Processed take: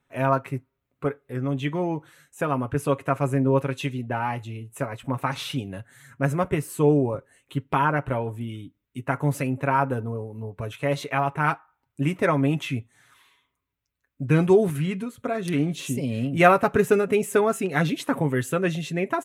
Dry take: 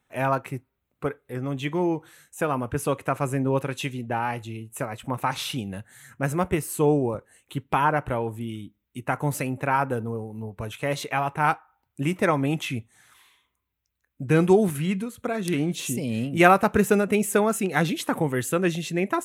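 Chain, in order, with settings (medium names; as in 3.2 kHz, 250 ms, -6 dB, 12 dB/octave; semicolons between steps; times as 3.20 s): treble shelf 4.2 kHz -7 dB; band-stop 800 Hz, Q 15; comb 7.3 ms, depth 47%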